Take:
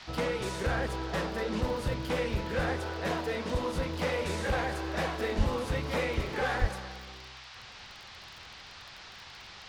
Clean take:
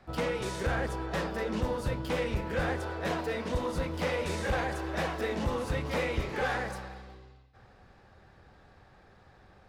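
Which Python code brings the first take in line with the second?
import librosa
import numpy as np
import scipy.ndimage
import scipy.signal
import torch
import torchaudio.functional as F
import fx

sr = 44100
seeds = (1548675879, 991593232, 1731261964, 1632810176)

y = fx.fix_declick_ar(x, sr, threshold=6.5)
y = fx.highpass(y, sr, hz=140.0, slope=24, at=(5.37, 5.49), fade=0.02)
y = fx.highpass(y, sr, hz=140.0, slope=24, at=(6.6, 6.72), fade=0.02)
y = fx.noise_reduce(y, sr, print_start_s=7.87, print_end_s=8.37, reduce_db=9.0)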